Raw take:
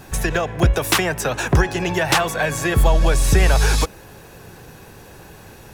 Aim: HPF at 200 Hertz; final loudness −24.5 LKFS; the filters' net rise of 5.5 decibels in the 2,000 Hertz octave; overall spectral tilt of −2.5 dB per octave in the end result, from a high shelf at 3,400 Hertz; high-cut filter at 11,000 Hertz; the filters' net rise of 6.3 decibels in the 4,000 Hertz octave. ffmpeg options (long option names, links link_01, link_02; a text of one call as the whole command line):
ffmpeg -i in.wav -af "highpass=200,lowpass=11000,equalizer=frequency=2000:width_type=o:gain=6,highshelf=frequency=3400:gain=-3.5,equalizer=frequency=4000:width_type=o:gain=8.5,volume=-6.5dB" out.wav